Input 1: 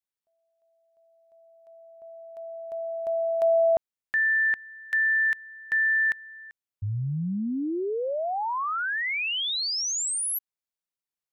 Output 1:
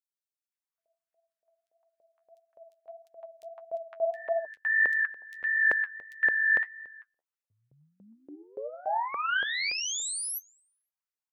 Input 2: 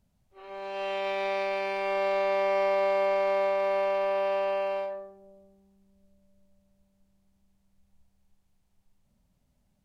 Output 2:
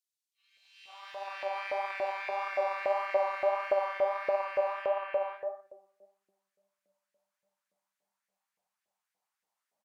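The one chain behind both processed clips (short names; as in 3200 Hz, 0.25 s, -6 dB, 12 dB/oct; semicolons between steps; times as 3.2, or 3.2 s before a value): three bands offset in time highs, mids, lows 0.51/0.68 s, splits 590/3300 Hz; flange 1.6 Hz, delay 4.3 ms, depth 8.6 ms, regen +40%; LFO high-pass saw up 3.5 Hz 510–1900 Hz; gain -1.5 dB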